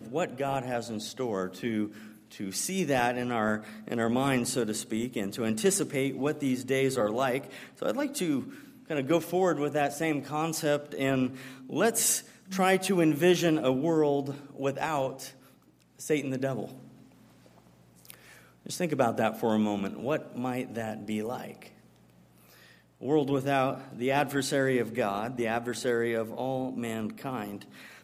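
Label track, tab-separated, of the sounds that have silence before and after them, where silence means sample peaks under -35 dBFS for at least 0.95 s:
18.050000	21.630000	sound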